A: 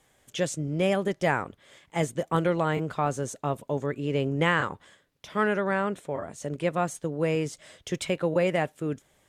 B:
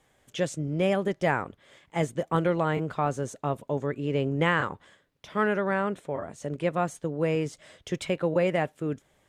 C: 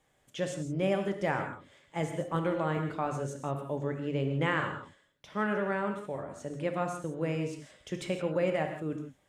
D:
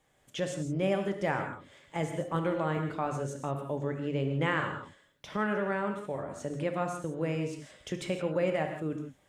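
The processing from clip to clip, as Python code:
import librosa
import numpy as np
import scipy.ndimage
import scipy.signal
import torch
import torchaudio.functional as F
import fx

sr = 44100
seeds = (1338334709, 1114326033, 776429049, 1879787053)

y1 = fx.high_shelf(x, sr, hz=4400.0, db=-6.5)
y2 = fx.rev_gated(y1, sr, seeds[0], gate_ms=190, shape='flat', drr_db=4.5)
y2 = F.gain(torch.from_numpy(y2), -6.0).numpy()
y3 = fx.recorder_agc(y2, sr, target_db=-24.5, rise_db_per_s=9.6, max_gain_db=30)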